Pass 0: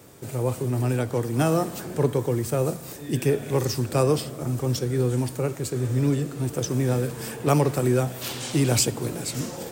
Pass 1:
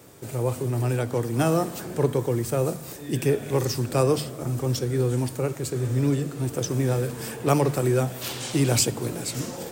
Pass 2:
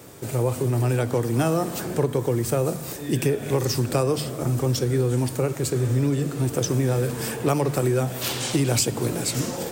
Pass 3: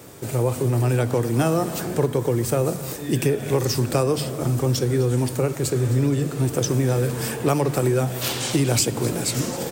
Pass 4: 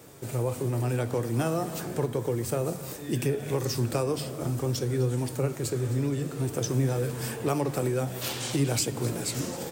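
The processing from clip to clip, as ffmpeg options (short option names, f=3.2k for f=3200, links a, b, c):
-af "bandreject=f=50:t=h:w=6,bandreject=f=100:t=h:w=6,bandreject=f=150:t=h:w=6,bandreject=f=200:t=h:w=6,bandreject=f=250:t=h:w=6"
-af "acompressor=threshold=-23dB:ratio=5,volume=5dB"
-af "aecho=1:1:260:0.133,volume=1.5dB"
-af "flanger=delay=6.1:depth=6.3:regen=77:speed=0.57:shape=triangular,volume=-2.5dB"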